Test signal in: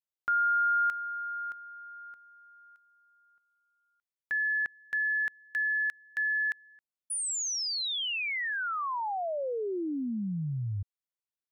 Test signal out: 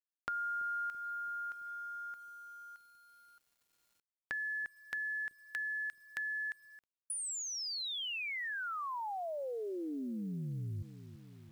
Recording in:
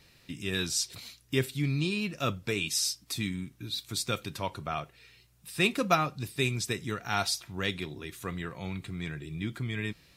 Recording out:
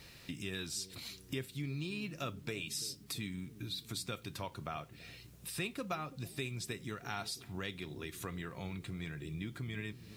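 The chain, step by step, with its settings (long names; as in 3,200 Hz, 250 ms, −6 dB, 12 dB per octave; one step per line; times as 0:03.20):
dynamic equaliser 6,100 Hz, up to −4 dB, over −48 dBFS, Q 3.2
downward compressor 3 to 1, threshold −47 dBFS
on a send: bucket-brigade delay 333 ms, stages 1,024, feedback 67%, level −14 dB
on the sum: harmonic generator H 2 −31 dB, 4 −41 dB, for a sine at −26 dBFS
bit reduction 12 bits
level +4.5 dB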